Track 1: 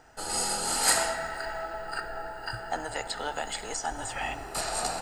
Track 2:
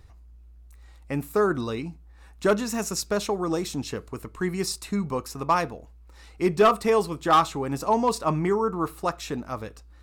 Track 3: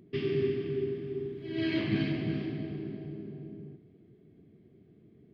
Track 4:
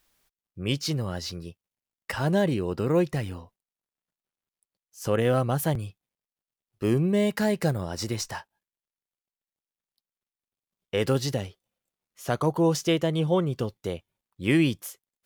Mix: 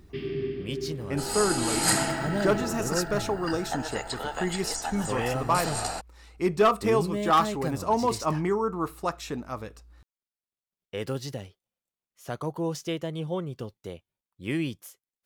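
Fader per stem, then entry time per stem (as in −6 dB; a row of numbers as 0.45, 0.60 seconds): −0.5, −2.5, −2.0, −7.5 decibels; 1.00, 0.00, 0.00, 0.00 seconds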